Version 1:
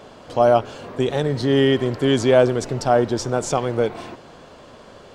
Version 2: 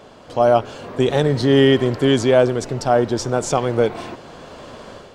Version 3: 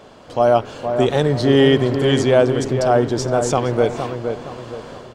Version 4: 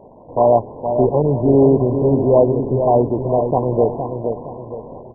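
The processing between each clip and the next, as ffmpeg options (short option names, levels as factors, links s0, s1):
-af "dynaudnorm=f=290:g=3:m=2.51,volume=0.891"
-filter_complex "[0:a]asplit=2[s0][s1];[s1]adelay=466,lowpass=f=1700:p=1,volume=0.473,asplit=2[s2][s3];[s3]adelay=466,lowpass=f=1700:p=1,volume=0.4,asplit=2[s4][s5];[s5]adelay=466,lowpass=f=1700:p=1,volume=0.4,asplit=2[s6][s7];[s7]adelay=466,lowpass=f=1700:p=1,volume=0.4,asplit=2[s8][s9];[s9]adelay=466,lowpass=f=1700:p=1,volume=0.4[s10];[s0][s2][s4][s6][s8][s10]amix=inputs=6:normalize=0"
-af "volume=1.12" -ar 22050 -c:a mp2 -b:a 8k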